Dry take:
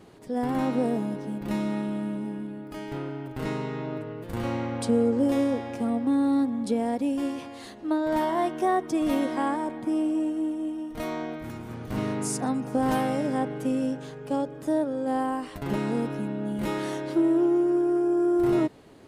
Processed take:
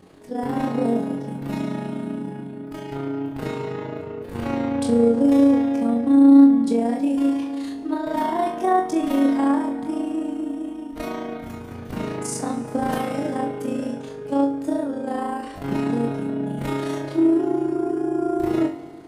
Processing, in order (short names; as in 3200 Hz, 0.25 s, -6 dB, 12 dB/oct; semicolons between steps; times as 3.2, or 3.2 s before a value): vibrato 1.9 Hz 10 cents; AM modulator 28 Hz, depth 70%; on a send: flutter echo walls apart 3.7 m, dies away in 0.29 s; on the sum: FDN reverb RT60 2 s, low-frequency decay 1.1×, high-frequency decay 0.85×, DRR 12 dB; gain +3.5 dB